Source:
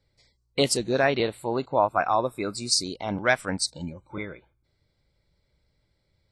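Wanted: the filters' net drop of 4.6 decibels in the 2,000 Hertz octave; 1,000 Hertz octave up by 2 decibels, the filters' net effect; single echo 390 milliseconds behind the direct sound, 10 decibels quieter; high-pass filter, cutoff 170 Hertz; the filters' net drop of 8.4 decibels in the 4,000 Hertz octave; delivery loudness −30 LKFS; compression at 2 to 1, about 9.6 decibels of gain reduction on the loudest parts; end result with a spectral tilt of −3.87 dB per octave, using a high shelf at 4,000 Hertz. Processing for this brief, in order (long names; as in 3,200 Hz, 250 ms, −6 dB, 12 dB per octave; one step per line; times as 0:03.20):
high-pass filter 170 Hz
parametric band 1,000 Hz +4.5 dB
parametric band 2,000 Hz −6 dB
high-shelf EQ 4,000 Hz −6 dB
parametric band 4,000 Hz −5.5 dB
downward compressor 2 to 1, threshold −34 dBFS
single-tap delay 390 ms −10 dB
level +4 dB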